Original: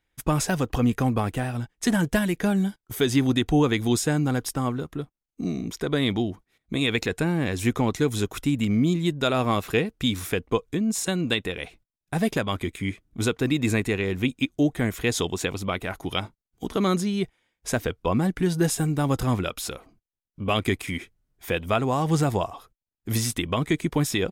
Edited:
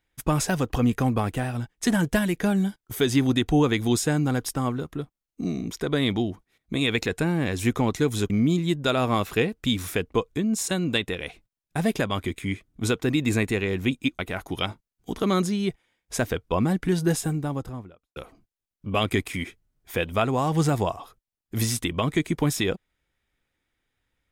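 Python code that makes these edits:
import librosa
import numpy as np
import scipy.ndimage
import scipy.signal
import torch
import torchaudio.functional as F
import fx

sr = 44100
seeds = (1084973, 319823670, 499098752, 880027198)

y = fx.studio_fade_out(x, sr, start_s=18.49, length_s=1.21)
y = fx.edit(y, sr, fx.cut(start_s=8.3, length_s=0.37),
    fx.cut(start_s=14.56, length_s=1.17), tone=tone)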